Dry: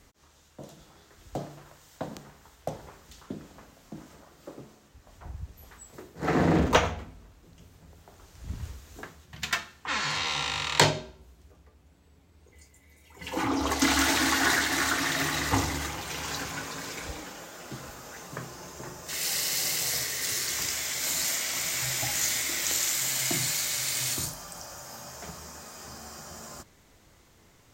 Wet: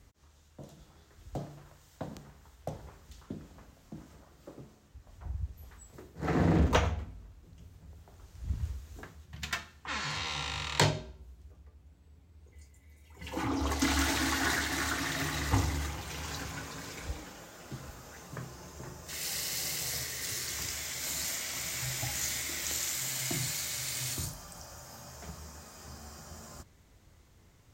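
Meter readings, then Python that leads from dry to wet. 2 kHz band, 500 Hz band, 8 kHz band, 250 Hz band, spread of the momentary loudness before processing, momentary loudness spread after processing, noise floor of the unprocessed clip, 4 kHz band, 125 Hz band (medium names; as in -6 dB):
-6.5 dB, -5.5 dB, -6.5 dB, -4.0 dB, 20 LU, 20 LU, -60 dBFS, -6.5 dB, +0.5 dB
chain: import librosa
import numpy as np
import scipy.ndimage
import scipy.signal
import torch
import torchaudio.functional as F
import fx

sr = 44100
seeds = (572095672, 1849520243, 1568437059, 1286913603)

y = fx.peak_eq(x, sr, hz=68.0, db=10.0, octaves=2.4)
y = y * 10.0 ** (-6.5 / 20.0)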